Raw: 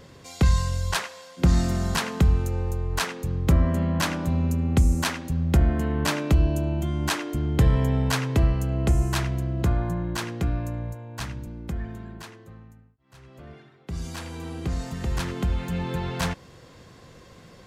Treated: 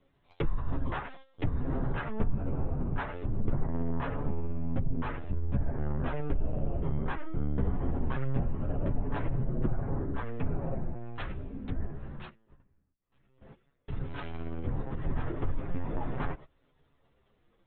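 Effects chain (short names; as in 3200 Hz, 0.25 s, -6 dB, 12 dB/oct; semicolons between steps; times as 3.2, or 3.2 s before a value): LPC vocoder at 8 kHz pitch kept; compressor 6:1, threshold -23 dBFS, peak gain reduction 11.5 dB; gate -41 dBFS, range -18 dB; chorus voices 6, 0.19 Hz, delay 11 ms, depth 4.1 ms; treble ducked by the level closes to 1400 Hz, closed at -28 dBFS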